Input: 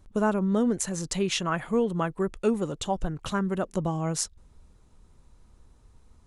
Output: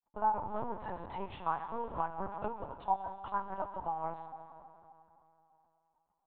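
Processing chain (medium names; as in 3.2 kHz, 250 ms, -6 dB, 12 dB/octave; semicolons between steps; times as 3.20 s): 0.46–1.26 s: waveshaping leveller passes 2; 3.40–3.89 s: comb 6.4 ms, depth 46%; peak limiter -18 dBFS, peak gain reduction 8.5 dB; crossover distortion -48.5 dBFS; band-pass filter 890 Hz, Q 6.1; plate-style reverb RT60 3.2 s, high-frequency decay 0.8×, DRR 8 dB; LPC vocoder at 8 kHz pitch kept; 1.93–2.53 s: three bands compressed up and down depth 70%; trim +6 dB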